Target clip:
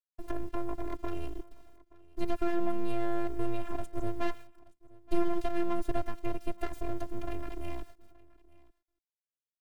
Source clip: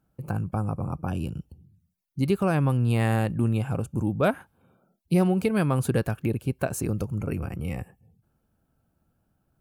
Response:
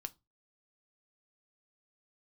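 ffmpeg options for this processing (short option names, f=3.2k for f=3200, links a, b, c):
-filter_complex "[0:a]aemphasis=mode=reproduction:type=50kf,agate=range=-33dB:threshold=-53dB:ratio=3:detection=peak,highshelf=f=2.4k:g=7,acrossover=split=320|1200[a][b][c];[b]asoftclip=type=tanh:threshold=-25.5dB[d];[c]acompressor=threshold=-47dB:ratio=6[e];[a][d][e]amix=inputs=3:normalize=0,aeval=exprs='abs(val(0))':c=same,acrusher=bits=9:mix=0:aa=0.000001,afftfilt=real='hypot(re,im)*cos(PI*b)':imag='0':win_size=512:overlap=0.75,aecho=1:1:875:0.0708"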